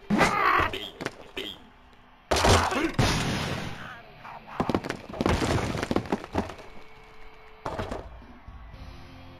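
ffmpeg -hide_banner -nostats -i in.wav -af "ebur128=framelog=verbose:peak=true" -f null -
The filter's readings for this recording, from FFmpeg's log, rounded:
Integrated loudness:
  I:         -27.0 LUFS
  Threshold: -38.9 LUFS
Loudness range:
  LRA:         9.2 LU
  Threshold: -48.9 LUFS
  LRA low:   -35.2 LUFS
  LRA high:  -26.1 LUFS
True peak:
  Peak:       -9.8 dBFS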